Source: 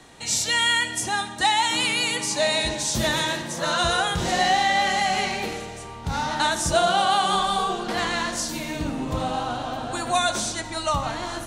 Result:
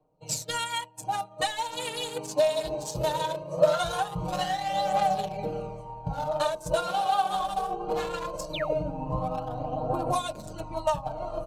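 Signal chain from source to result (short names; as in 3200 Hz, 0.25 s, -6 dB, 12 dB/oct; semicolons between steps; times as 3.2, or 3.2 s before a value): Wiener smoothing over 25 samples; thirty-one-band EQ 315 Hz -5 dB, 630 Hz +3 dB, 1000 Hz +4 dB, 2000 Hz -7 dB, 12500 Hz +11 dB; painted sound fall, 8.53–8.74, 370–4300 Hz -33 dBFS; comb 6.5 ms, depth 99%; compressor 5:1, threshold -31 dBFS, peak gain reduction 17 dB; bell 540 Hz +9.5 dB 0.32 oct; expander -26 dBFS; phaser 0.2 Hz, delay 2.9 ms, feedback 47%; gain +6 dB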